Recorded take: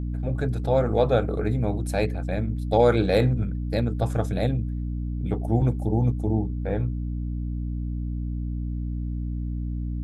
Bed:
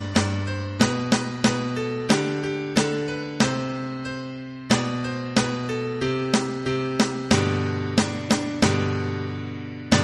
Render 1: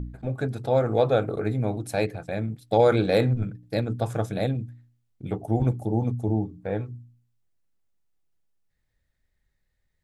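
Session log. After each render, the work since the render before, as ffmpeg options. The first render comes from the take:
-af "bandreject=f=60:t=h:w=4,bandreject=f=120:t=h:w=4,bandreject=f=180:t=h:w=4,bandreject=f=240:t=h:w=4,bandreject=f=300:t=h:w=4"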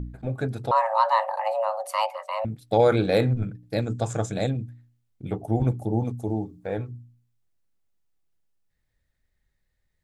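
-filter_complex "[0:a]asettb=1/sr,asplit=3[a][b][c];[a]atrim=end=0.714[d];[b]atrim=start=0.71:end=2.45,asetpts=PTS-STARTPTS,afade=t=in:d=0.004:c=qsin,afade=t=out:st=1.736:d=0.004:c=qsin,afreqshift=440[e];[c]atrim=start=2.446[f];[d][e]acrossfade=d=0.004:c1=hsin:c2=qsin[g];[g][f]acrossfade=d=0.004:c1=qsin:c2=hsin,asettb=1/sr,asplit=3[h][i][j];[h]atrim=end=3.804[k];[i]atrim=start=3.8:end=4.5,asetpts=PTS-STARTPTS,afade=t=in:d=0.004:c=qsin,afade=t=out:st=0.696:d=0.004:c=qsin,lowpass=f=7.2k:t=q:w=4.9[l];[j]atrim=start=4.496[m];[k][l]acrossfade=d=0.004:c1=hsin:c2=qsin[n];[n][m]acrossfade=d=0.004:c1=qsin:c2=hsin,asettb=1/sr,asplit=3[o][p][q];[o]atrim=end=6.054[r];[p]atrim=start=6.05:end=6.78,asetpts=PTS-STARTPTS,afade=t=in:d=0.004:c=qsin,afade=t=out:st=0.726:d=0.004:c=qsin,bass=f=250:g=-5,treble=f=4k:g=6[s];[q]atrim=start=6.776[t];[r][s]acrossfade=d=0.004:c1=hsin:c2=qsin[u];[u][t]acrossfade=d=0.004:c1=qsin:c2=hsin"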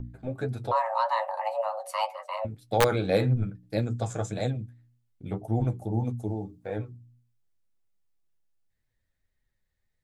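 -filter_complex "[0:a]flanger=delay=7.7:depth=3.9:regen=38:speed=1.8:shape=triangular,acrossover=split=660|1600[a][b][c];[a]aeval=exprs='(mod(5.31*val(0)+1,2)-1)/5.31':c=same[d];[d][b][c]amix=inputs=3:normalize=0"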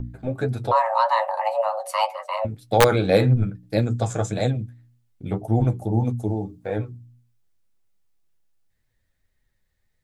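-af "volume=6.5dB"

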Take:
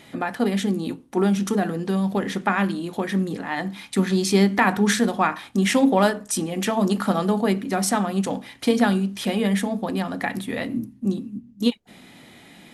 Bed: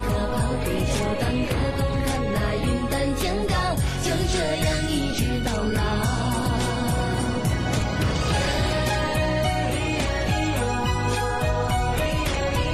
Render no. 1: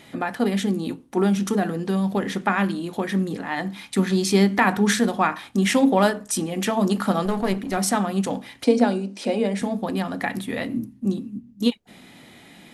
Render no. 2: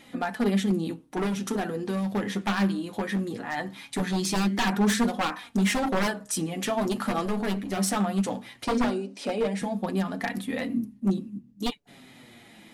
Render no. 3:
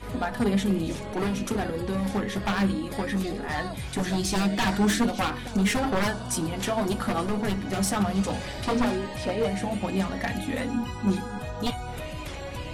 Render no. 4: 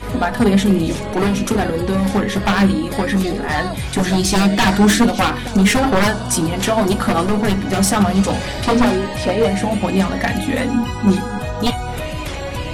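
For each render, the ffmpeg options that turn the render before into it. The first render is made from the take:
-filter_complex "[0:a]asettb=1/sr,asplit=3[a][b][c];[a]atrim=end=7.254[d];[b]atrim=start=7.25:end=7.77,asetpts=PTS-STARTPTS,afade=t=in:d=0.004:c=qsin,afade=t=out:st=0.516:d=0.004:c=qsin,aeval=exprs='clip(val(0),-1,0.0447)':c=same[e];[c]atrim=start=7.766[f];[d][e]acrossfade=d=0.004:c1=hsin:c2=qsin[g];[g][f]acrossfade=d=0.004:c1=qsin:c2=hsin,asettb=1/sr,asplit=3[h][i][j];[h]atrim=end=8.644[k];[i]atrim=start=8.64:end=9.62,asetpts=PTS-STARTPTS,afade=t=in:d=0.004:c=qsin,afade=t=out:st=0.976:d=0.004:c=qsin,highpass=f=230:w=0.5412,highpass=f=230:w=1.3066,equalizer=f=260:t=q:w=4:g=5,equalizer=f=530:t=q:w=4:g=7,equalizer=f=1.2k:t=q:w=4:g=-7,equalizer=f=1.8k:t=q:w=4:g=-8,equalizer=f=3.3k:t=q:w=4:g=-9,equalizer=f=6.8k:t=q:w=4:g=-4,lowpass=f=8.5k:w=0.5412,lowpass=f=8.5k:w=1.3066[l];[j]atrim=start=9.616[m];[k][l]acrossfade=d=0.004:c1=hsin:c2=qsin[n];[n][m]acrossfade=d=0.004:c1=qsin:c2=hsin"
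-af "aeval=exprs='0.168*(abs(mod(val(0)/0.168+3,4)-2)-1)':c=same,flanger=delay=3.7:depth=6.7:regen=29:speed=0.19:shape=triangular"
-filter_complex "[1:a]volume=-12dB[a];[0:a][a]amix=inputs=2:normalize=0"
-af "volume=10.5dB"

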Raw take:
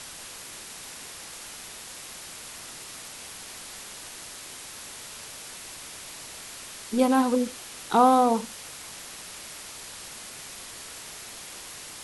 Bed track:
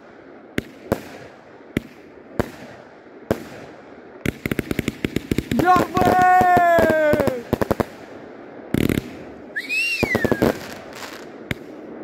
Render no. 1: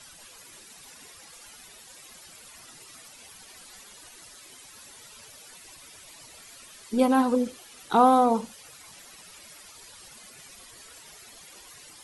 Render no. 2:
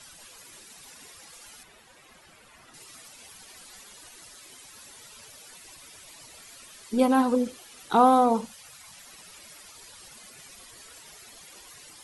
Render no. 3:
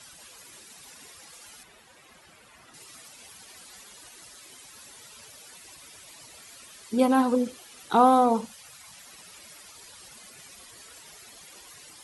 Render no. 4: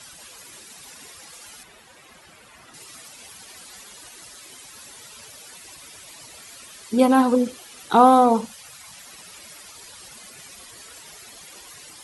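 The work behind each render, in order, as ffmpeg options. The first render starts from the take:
-af "afftdn=nr=13:nf=-42"
-filter_complex "[0:a]asettb=1/sr,asplit=3[a][b][c];[a]atrim=end=1.634[d];[b]atrim=start=1.63:end=2.74,asetpts=PTS-STARTPTS,afade=t=in:d=0.004:c=qsin,afade=t=out:st=1.106:d=0.004:c=qsin,acrossover=split=2900[e][f];[f]acompressor=threshold=-59dB:ratio=4:attack=1:release=60[g];[e][g]amix=inputs=2:normalize=0[h];[c]atrim=start=2.736[i];[d][h]acrossfade=d=0.004:c1=hsin:c2=qsin[j];[j][i]acrossfade=d=0.004:c1=qsin:c2=hsin,asettb=1/sr,asplit=3[k][l][m];[k]atrim=end=8.464[n];[l]atrim=start=8.46:end=9.07,asetpts=PTS-STARTPTS,afade=t=in:d=0.004:c=qsin,afade=t=out:st=0.606:d=0.004:c=qsin,equalizer=f=370:t=o:w=0.75:g=-12[o];[m]atrim=start=9.066[p];[n][o]acrossfade=d=0.004:c1=hsin:c2=qsin[q];[q][p]acrossfade=d=0.004:c1=qsin:c2=hsin"
-af "highpass=42"
-af "volume=5dB"

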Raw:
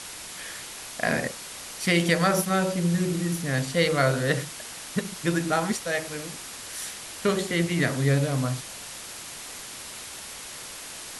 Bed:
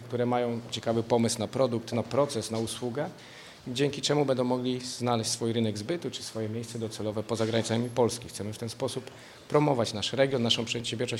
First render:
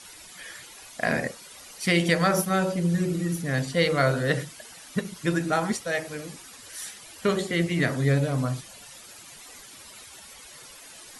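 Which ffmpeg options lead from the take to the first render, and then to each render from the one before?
-af "afftdn=nr=12:nf=-40"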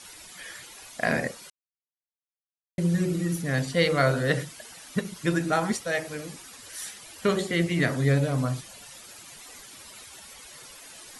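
-filter_complex "[0:a]asplit=3[a][b][c];[a]atrim=end=1.5,asetpts=PTS-STARTPTS,afade=t=out:st=1.496:d=0.004:c=hsin[d];[b]atrim=start=1.5:end=2.78,asetpts=PTS-STARTPTS,volume=0[e];[c]atrim=start=2.78,asetpts=PTS-STARTPTS,afade=t=in:d=0.004:c=hsin[f];[d][e][f]concat=n=3:v=0:a=1"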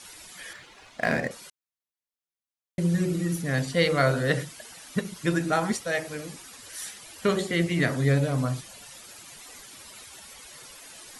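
-filter_complex "[0:a]asettb=1/sr,asplit=3[a][b][c];[a]atrim=end=0.534[d];[b]atrim=start=0.53:end=1.31,asetpts=PTS-STARTPTS,afade=t=in:d=0.004:c=qsin,afade=t=out:st=0.776:d=0.004:c=qsin,adynamicsmooth=sensitivity=8:basefreq=3.4k[e];[c]atrim=start=1.306[f];[d][e]acrossfade=d=0.004:c1=hsin:c2=qsin[g];[g][f]acrossfade=d=0.004:c1=qsin:c2=hsin"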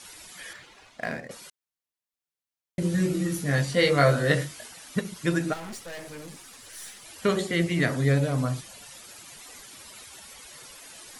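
-filter_complex "[0:a]asettb=1/sr,asplit=3[a][b][c];[a]atrim=end=2.804[d];[b]atrim=start=2.8:end=4.68,asetpts=PTS-STARTPTS,afade=t=in:d=0.004:c=qsin,afade=t=out:st=1.876:d=0.004:c=qsin,asplit=2[e][f];[f]adelay=21,volume=-3dB[g];[e][g]amix=inputs=2:normalize=0,atrim=end_sample=82908[h];[c]atrim=start=4.676[i];[d][h]acrossfade=d=0.004:c1=hsin:c2=qsin[j];[j][i]acrossfade=d=0.004:c1=qsin:c2=hsin,asplit=3[k][l][m];[k]afade=t=out:st=5.52:d=0.02[n];[l]aeval=exprs='(tanh(70.8*val(0)+0.4)-tanh(0.4))/70.8':c=same,afade=t=in:st=5.52:d=0.02,afade=t=out:st=7.04:d=0.02[o];[m]afade=t=in:st=7.04:d=0.02[p];[n][o][p]amix=inputs=3:normalize=0,asplit=2[q][r];[q]atrim=end=1.29,asetpts=PTS-STARTPTS,afade=t=out:st=0.41:d=0.88:c=qsin:silence=0.16788[s];[r]atrim=start=1.29,asetpts=PTS-STARTPTS,afade=t=in:d=0.004:c=hsin:silence=0.16788[t];[s][t]concat=n=2:v=0:a=1"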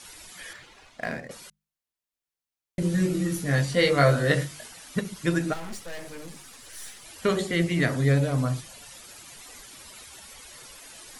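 -af "lowshelf=f=60:g=9.5,bandreject=f=50:t=h:w=6,bandreject=f=100:t=h:w=6,bandreject=f=150:t=h:w=6,bandreject=f=200:t=h:w=6"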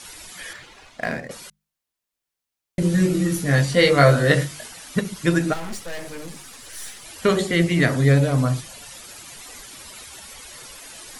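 -af "volume=5.5dB"

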